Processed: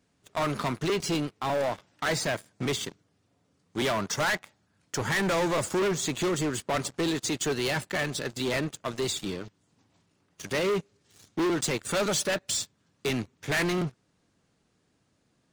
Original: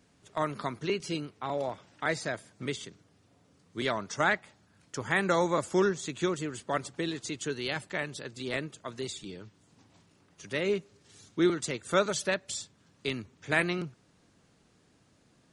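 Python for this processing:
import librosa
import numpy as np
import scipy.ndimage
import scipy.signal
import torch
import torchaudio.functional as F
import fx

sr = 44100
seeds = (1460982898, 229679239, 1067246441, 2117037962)

y = fx.leveller(x, sr, passes=3)
y = 10.0 ** (-23.5 / 20.0) * np.tanh(y / 10.0 ** (-23.5 / 20.0))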